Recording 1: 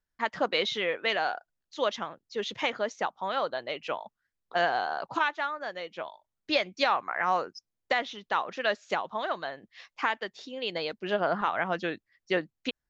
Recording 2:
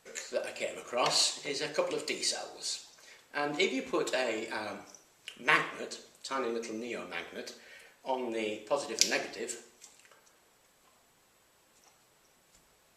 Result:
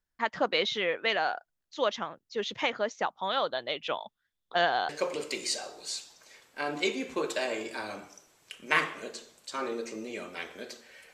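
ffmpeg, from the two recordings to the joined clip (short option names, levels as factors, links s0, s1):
-filter_complex "[0:a]asettb=1/sr,asplit=3[s0][s1][s2];[s0]atrim=end=3.194[s3];[s1]atrim=start=3.19:end=4.89,asetpts=PTS-STARTPTS,afade=t=in:d=0.004:c=qsin,afade=t=out:st=1.696:d=0.004:c=qsin,equalizer=f=3500:t=o:w=0.21:g=14[s4];[s2]atrim=start=4.886[s5];[s3][s4]acrossfade=d=0.004:c1=hsin:c2=qsin[s6];[s6][s5]acrossfade=d=0.004:c1=qsin:c2=hsin,apad=whole_dur=11.13,atrim=end=11.13,atrim=end=4.892[s7];[1:a]atrim=start=1.658:end=7.9[s8];[s7][s8]acrossfade=d=0.004:c1=hsin:c2=hsin"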